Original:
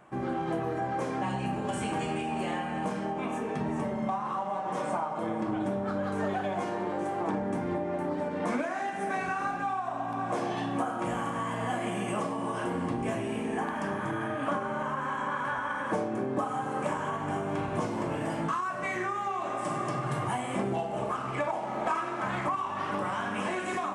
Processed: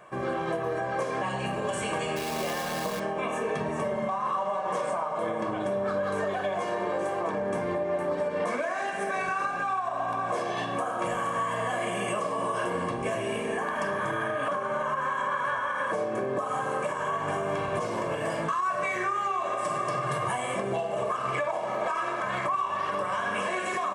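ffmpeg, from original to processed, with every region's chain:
-filter_complex "[0:a]asettb=1/sr,asplit=3[a][b][c];[a]atrim=end=2.164[d];[b]atrim=start=2.16:end=3,asetpts=PTS-STARTPTS,afade=t=in:d=0.004:c=qsin,afade=t=out:st=0.836:d=0.004:c=qsin,lowpass=f=1.5k:p=1,acrusher=bits=7:dc=4:mix=0:aa=0.000001[e];[c]atrim=start=2.996[f];[d][e]acrossfade=d=0.004:c1=hsin:c2=qsin[g];[g][f]acrossfade=d=0.004:c1=qsin:c2=hsin,lowshelf=f=160:g=-11.5,aecho=1:1:1.8:0.56,alimiter=level_in=1dB:limit=-24dB:level=0:latency=1:release=144,volume=-1dB,volume=5dB"

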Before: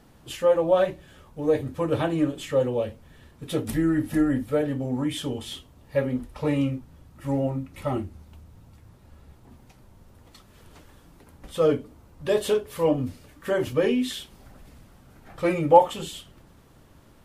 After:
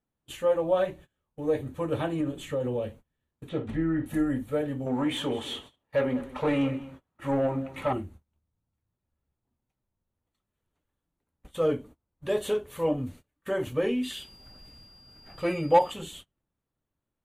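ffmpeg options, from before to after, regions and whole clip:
-filter_complex "[0:a]asettb=1/sr,asplit=3[a][b][c];[a]atrim=end=2.204[d];[b]atrim=start=2.2:end=2.88,asetpts=PTS-STARTPTS,afade=t=in:d=0.004:c=qsin,afade=t=out:st=0.676:d=0.004:c=qsin,acompressor=threshold=-22dB:ratio=6:attack=3.2:release=140:knee=1:detection=peak,lowshelf=f=430:g=4[e];[c]atrim=start=2.876[f];[d][e]acrossfade=d=0.004:c1=hsin:c2=qsin[g];[g][f]acrossfade=d=0.004:c1=qsin:c2=hsin,asettb=1/sr,asplit=3[h][i][j];[h]atrim=end=3.494[k];[i]atrim=start=3.49:end=4.06,asetpts=PTS-STARTPTS,afade=t=in:d=0.004:c=qsin,afade=t=out:st=0.566:d=0.004:c=qsin,lowpass=2.7k,asplit=2[l][m];[m]adelay=50,volume=-11.5dB[n];[l][n]amix=inputs=2:normalize=0,atrim=end_sample=25137[o];[j]atrim=start=4.056[p];[k][o]acrossfade=d=0.004:c1=hsin:c2=qsin[q];[q][p]acrossfade=d=0.004:c1=qsin:c2=hsin,asettb=1/sr,asplit=3[r][s][t];[r]atrim=end=4.864[u];[s]atrim=start=4.86:end=7.93,asetpts=PTS-STARTPTS,afade=t=in:d=0.004:c=qsin,afade=t=out:st=3.066:d=0.004:c=qsin,asplit=2[v][w];[w]highpass=f=720:p=1,volume=19dB,asoftclip=type=tanh:threshold=-11dB[x];[v][x]amix=inputs=2:normalize=0,lowpass=f=1.9k:p=1,volume=-6dB,aecho=1:1:202:0.15,atrim=end_sample=135387[y];[t]atrim=start=7.926[z];[u][y]acrossfade=d=0.004:c1=hsin:c2=qsin[aa];[aa][z]acrossfade=d=0.004:c1=qsin:c2=hsin,asettb=1/sr,asplit=3[ab][ac][ad];[ab]atrim=end=14.034[ae];[ac]atrim=start=14.03:end=15.92,asetpts=PTS-STARTPTS,afade=t=in:d=0.004:c=qsin,afade=t=out:st=1.886:d=0.004:c=qsin,equalizer=f=2.8k:w=7.6:g=9,asoftclip=type=hard:threshold=-6.5dB,aeval=exprs='val(0)+0.0126*sin(2*PI*4800*n/s)':c=same[af];[ad]atrim=start=15.916[ag];[ae][af]acrossfade=d=0.004:c1=hsin:c2=qsin[ah];[ah][ag]acrossfade=d=0.004:c1=qsin:c2=hsin,agate=range=-27dB:threshold=-41dB:ratio=16:detection=peak,equalizer=f=5.1k:w=6.3:g=-14,volume=-4.5dB"

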